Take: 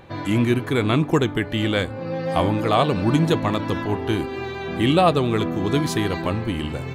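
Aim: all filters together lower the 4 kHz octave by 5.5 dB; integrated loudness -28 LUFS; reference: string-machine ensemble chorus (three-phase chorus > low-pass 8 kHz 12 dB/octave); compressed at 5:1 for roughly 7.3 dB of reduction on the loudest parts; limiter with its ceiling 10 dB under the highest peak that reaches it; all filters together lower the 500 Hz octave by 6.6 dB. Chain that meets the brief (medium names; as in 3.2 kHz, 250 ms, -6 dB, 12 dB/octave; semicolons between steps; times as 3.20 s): peaking EQ 500 Hz -9 dB; peaking EQ 4 kHz -7 dB; compression 5:1, threshold -24 dBFS; peak limiter -24.5 dBFS; three-phase chorus; low-pass 8 kHz 12 dB/octave; trim +9 dB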